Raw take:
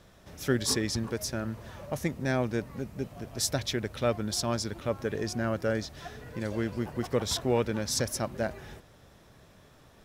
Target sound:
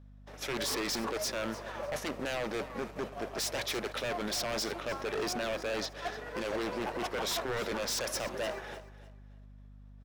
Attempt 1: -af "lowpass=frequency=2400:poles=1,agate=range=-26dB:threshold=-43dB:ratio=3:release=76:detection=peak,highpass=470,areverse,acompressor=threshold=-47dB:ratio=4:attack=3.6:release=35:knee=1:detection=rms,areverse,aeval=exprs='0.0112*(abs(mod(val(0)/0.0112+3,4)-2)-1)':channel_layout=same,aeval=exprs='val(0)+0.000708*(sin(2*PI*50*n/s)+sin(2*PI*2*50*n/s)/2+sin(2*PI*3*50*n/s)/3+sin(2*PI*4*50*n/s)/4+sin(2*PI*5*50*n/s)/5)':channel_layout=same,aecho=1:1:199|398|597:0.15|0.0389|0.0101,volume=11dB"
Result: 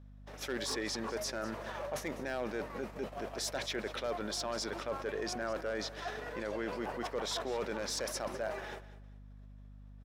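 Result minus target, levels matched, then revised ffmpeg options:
echo 102 ms early; downward compressor: peak gain reduction +6.5 dB
-af "lowpass=frequency=2400:poles=1,agate=range=-26dB:threshold=-43dB:ratio=3:release=76:detection=peak,highpass=470,areverse,acompressor=threshold=-38.5dB:ratio=4:attack=3.6:release=35:knee=1:detection=rms,areverse,aeval=exprs='0.0112*(abs(mod(val(0)/0.0112+3,4)-2)-1)':channel_layout=same,aeval=exprs='val(0)+0.000708*(sin(2*PI*50*n/s)+sin(2*PI*2*50*n/s)/2+sin(2*PI*3*50*n/s)/3+sin(2*PI*4*50*n/s)/4+sin(2*PI*5*50*n/s)/5)':channel_layout=same,aecho=1:1:301|602|903:0.15|0.0389|0.0101,volume=11dB"

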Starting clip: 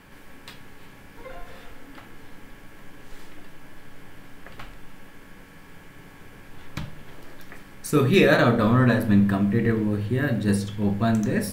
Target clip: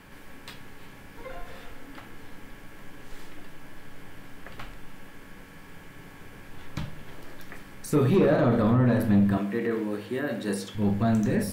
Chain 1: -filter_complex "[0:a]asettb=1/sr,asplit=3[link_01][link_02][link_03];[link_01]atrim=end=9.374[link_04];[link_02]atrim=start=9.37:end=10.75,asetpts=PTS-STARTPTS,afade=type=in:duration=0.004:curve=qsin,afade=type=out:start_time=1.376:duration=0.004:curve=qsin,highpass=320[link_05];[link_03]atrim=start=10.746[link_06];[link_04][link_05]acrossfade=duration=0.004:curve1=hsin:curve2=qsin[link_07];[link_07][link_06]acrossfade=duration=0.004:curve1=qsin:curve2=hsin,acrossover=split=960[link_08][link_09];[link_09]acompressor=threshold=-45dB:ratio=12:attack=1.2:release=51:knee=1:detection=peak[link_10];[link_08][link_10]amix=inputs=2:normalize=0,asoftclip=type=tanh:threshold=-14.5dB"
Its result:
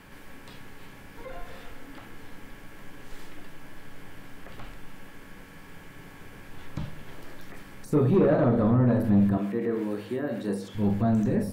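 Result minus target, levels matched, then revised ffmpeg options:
downward compressor: peak gain reduction +10 dB
-filter_complex "[0:a]asettb=1/sr,asplit=3[link_01][link_02][link_03];[link_01]atrim=end=9.374[link_04];[link_02]atrim=start=9.37:end=10.75,asetpts=PTS-STARTPTS,afade=type=in:duration=0.004:curve=qsin,afade=type=out:start_time=1.376:duration=0.004:curve=qsin,highpass=320[link_05];[link_03]atrim=start=10.746[link_06];[link_04][link_05]acrossfade=duration=0.004:curve1=hsin:curve2=qsin[link_07];[link_07][link_06]acrossfade=duration=0.004:curve1=qsin:curve2=hsin,acrossover=split=960[link_08][link_09];[link_09]acompressor=threshold=-34dB:ratio=12:attack=1.2:release=51:knee=1:detection=peak[link_10];[link_08][link_10]amix=inputs=2:normalize=0,asoftclip=type=tanh:threshold=-14.5dB"

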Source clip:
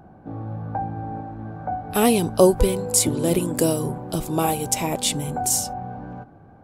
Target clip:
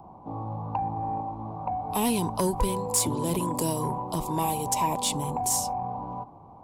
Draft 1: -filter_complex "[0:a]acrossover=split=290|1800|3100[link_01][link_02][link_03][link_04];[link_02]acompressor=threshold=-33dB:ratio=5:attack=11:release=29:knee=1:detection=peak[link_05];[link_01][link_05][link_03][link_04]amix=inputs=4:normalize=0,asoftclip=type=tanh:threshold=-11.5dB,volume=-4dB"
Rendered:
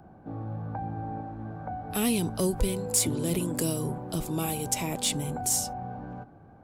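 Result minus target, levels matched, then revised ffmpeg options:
1,000 Hz band −7.5 dB
-filter_complex "[0:a]acrossover=split=290|1800|3100[link_01][link_02][link_03][link_04];[link_02]acompressor=threshold=-33dB:ratio=5:attack=11:release=29:knee=1:detection=peak,lowpass=frequency=1000:width_type=q:width=11[link_05];[link_01][link_05][link_03][link_04]amix=inputs=4:normalize=0,asoftclip=type=tanh:threshold=-11.5dB,volume=-4dB"

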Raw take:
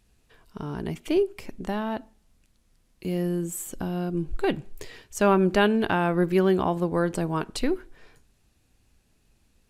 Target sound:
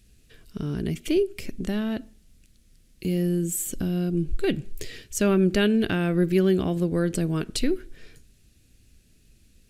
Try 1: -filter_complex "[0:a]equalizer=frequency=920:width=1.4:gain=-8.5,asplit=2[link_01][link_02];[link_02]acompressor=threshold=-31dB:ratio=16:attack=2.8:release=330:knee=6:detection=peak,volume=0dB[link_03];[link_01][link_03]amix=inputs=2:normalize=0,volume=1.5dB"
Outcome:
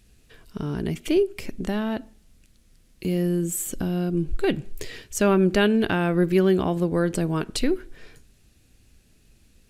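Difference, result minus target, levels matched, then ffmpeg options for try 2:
1,000 Hz band +5.5 dB
-filter_complex "[0:a]equalizer=frequency=920:width=1.4:gain=-19.5,asplit=2[link_01][link_02];[link_02]acompressor=threshold=-31dB:ratio=16:attack=2.8:release=330:knee=6:detection=peak,volume=0dB[link_03];[link_01][link_03]amix=inputs=2:normalize=0,volume=1.5dB"

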